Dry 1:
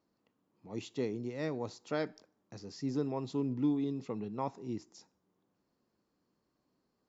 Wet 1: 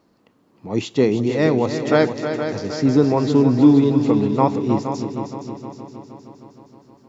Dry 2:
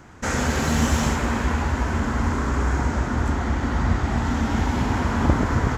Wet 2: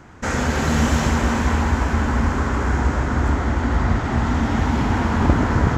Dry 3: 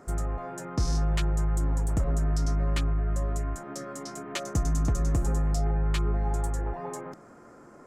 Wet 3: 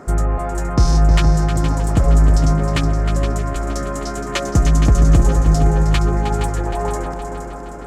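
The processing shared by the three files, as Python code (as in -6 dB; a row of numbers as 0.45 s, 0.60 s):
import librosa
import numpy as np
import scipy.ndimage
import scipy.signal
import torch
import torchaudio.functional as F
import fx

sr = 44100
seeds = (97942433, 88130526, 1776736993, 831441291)

y = fx.high_shelf(x, sr, hz=5900.0, db=-6.5)
y = fx.echo_heads(y, sr, ms=156, heads='second and third', feedback_pct=57, wet_db=-9.5)
y = y * 10.0 ** (-2 / 20.0) / np.max(np.abs(y))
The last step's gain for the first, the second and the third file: +18.5 dB, +2.0 dB, +12.5 dB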